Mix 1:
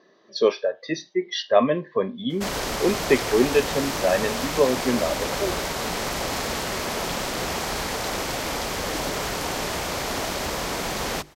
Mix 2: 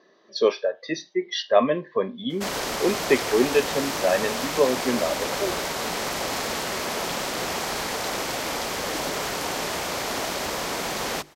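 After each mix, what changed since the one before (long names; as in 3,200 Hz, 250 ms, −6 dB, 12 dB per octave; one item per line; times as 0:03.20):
master: add low-shelf EQ 110 Hz −12 dB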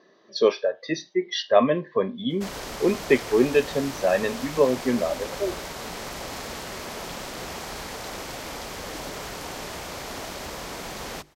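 background −7.5 dB
master: add low-shelf EQ 110 Hz +12 dB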